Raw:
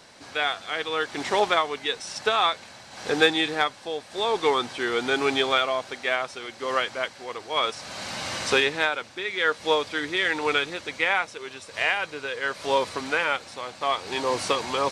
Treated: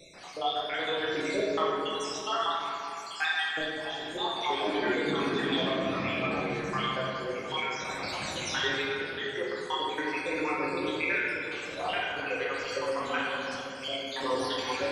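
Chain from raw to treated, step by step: random holes in the spectrogram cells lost 74%; 4.39–6.61 s: ever faster or slower copies 119 ms, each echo -6 st, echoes 3, each echo -6 dB; compression 2:1, threshold -38 dBFS, peak gain reduction 11 dB; reverberation RT60 2.9 s, pre-delay 6 ms, DRR -6.5 dB

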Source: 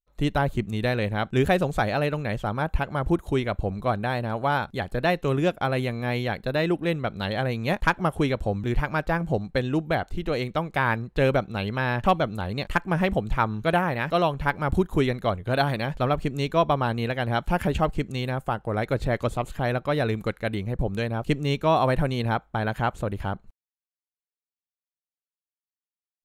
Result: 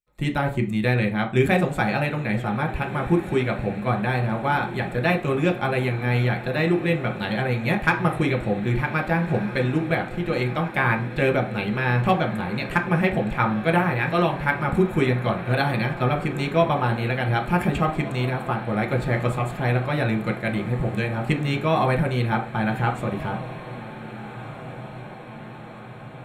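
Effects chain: echo that smears into a reverb 1604 ms, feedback 65%, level -14 dB; reverberation RT60 0.35 s, pre-delay 3 ms, DRR 2.5 dB

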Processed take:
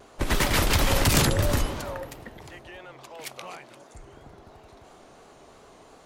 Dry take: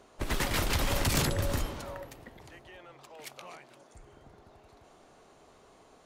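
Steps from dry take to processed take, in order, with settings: vibrato 2.9 Hz 79 cents; trim +7 dB

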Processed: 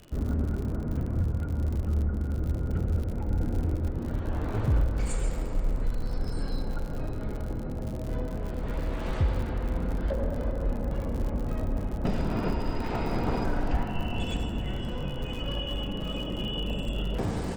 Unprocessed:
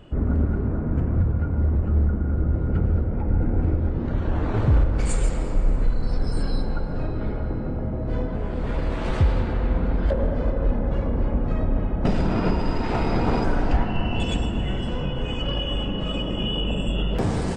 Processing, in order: on a send at -13 dB: reverberation RT60 0.40 s, pre-delay 62 ms; on the sum: crackle 72 per s -28 dBFS; trim -6.5 dB

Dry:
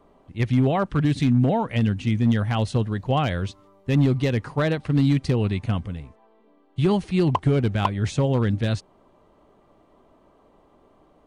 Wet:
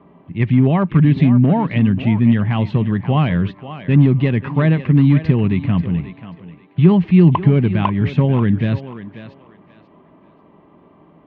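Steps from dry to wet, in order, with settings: in parallel at 0 dB: peak limiter -23 dBFS, peak gain reduction 10.5 dB; on the sum: cabinet simulation 100–2700 Hz, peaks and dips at 170 Hz +9 dB, 500 Hz -8 dB, 740 Hz -6 dB, 1.4 kHz -7 dB; thinning echo 537 ms, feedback 25%, high-pass 330 Hz, level -11 dB; trim +4 dB

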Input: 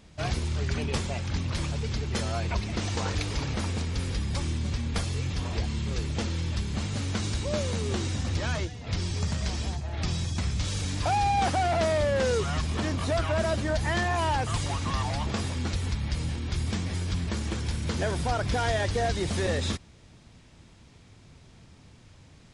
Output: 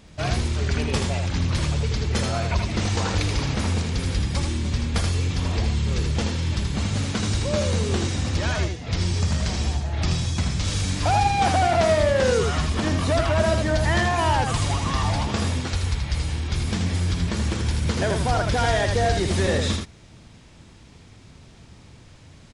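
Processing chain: 15.60–16.50 s: peaking EQ 220 Hz -7.5 dB 1.2 oct; delay 80 ms -5 dB; trim +4.5 dB

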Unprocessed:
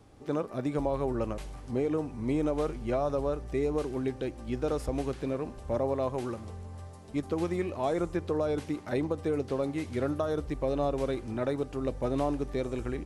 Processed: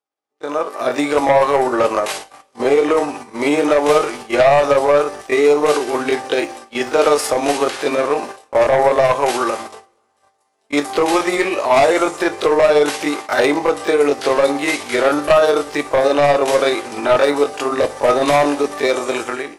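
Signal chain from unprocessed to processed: high-pass 650 Hz 12 dB/octave; gate -50 dBFS, range -34 dB; level rider gain up to 15 dB; in parallel at -6 dB: sine folder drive 10 dB, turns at -5.5 dBFS; on the sum: granular stretch 1.5×, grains 124 ms; two-slope reverb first 0.29 s, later 1.5 s, from -26 dB, DRR 12 dB

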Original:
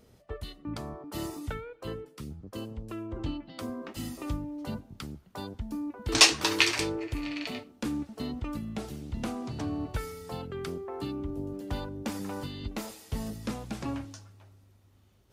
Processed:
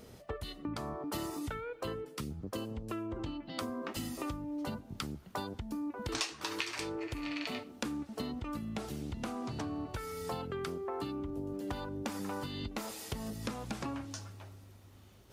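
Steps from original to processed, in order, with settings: dynamic bell 1.2 kHz, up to +4 dB, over -48 dBFS, Q 1.4; compression 8:1, threshold -42 dBFS, peak gain reduction 28.5 dB; bass shelf 140 Hz -4.5 dB; trim +7.5 dB

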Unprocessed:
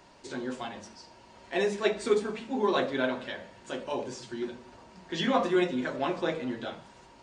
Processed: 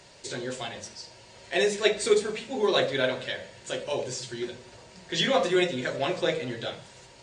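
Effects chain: graphic EQ 125/250/500/1000/2000/4000/8000 Hz +9/-7/+7/-5/+5/+6/+11 dB

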